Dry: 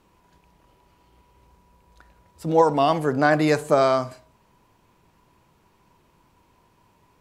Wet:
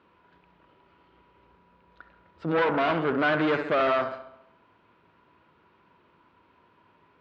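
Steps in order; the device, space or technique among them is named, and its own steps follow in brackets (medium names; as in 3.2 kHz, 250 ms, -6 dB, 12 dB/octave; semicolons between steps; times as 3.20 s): analogue delay pedal into a guitar amplifier (bucket-brigade echo 67 ms, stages 2048, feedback 56%, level -13 dB; valve stage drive 24 dB, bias 0.65; cabinet simulation 110–3500 Hz, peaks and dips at 130 Hz -9 dB, 200 Hz -4 dB, 800 Hz -4 dB, 1.4 kHz +7 dB); trim +3.5 dB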